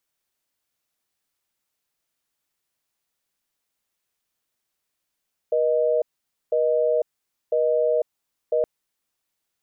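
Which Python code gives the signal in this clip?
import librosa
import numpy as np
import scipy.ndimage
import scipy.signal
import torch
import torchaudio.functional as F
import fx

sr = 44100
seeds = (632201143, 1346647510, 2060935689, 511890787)

y = fx.call_progress(sr, length_s=3.12, kind='busy tone', level_db=-20.5)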